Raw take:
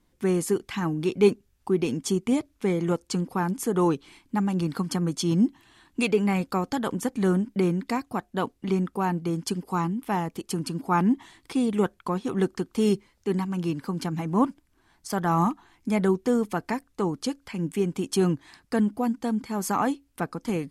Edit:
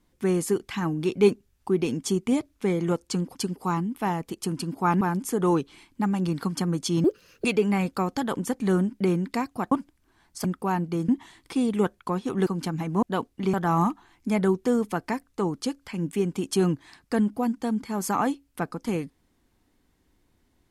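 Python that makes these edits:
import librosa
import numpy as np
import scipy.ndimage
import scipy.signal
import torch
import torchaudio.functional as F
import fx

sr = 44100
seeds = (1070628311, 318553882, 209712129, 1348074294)

y = fx.edit(x, sr, fx.speed_span(start_s=5.38, length_s=0.62, speed=1.53),
    fx.swap(start_s=8.27, length_s=0.51, other_s=14.41, other_length_s=0.73),
    fx.move(start_s=9.42, length_s=1.66, to_s=3.35),
    fx.cut(start_s=12.46, length_s=1.39), tone=tone)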